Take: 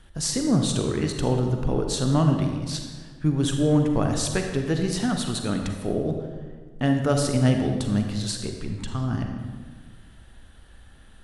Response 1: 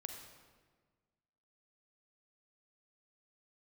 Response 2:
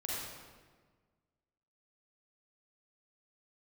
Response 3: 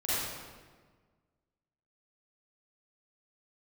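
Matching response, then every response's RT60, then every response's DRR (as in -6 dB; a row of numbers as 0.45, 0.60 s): 1; 1.5, 1.5, 1.5 s; 3.5, -6.0, -12.0 dB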